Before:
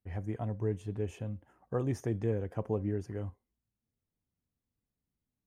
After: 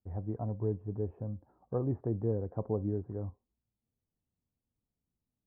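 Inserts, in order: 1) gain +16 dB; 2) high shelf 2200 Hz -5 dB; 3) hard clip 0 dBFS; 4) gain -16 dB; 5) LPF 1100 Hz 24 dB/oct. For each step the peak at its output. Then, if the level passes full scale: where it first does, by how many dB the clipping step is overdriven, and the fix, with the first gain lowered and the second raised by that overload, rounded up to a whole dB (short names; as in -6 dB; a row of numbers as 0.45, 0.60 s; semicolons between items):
-3.5, -4.0, -4.0, -20.0, -20.5 dBFS; no overload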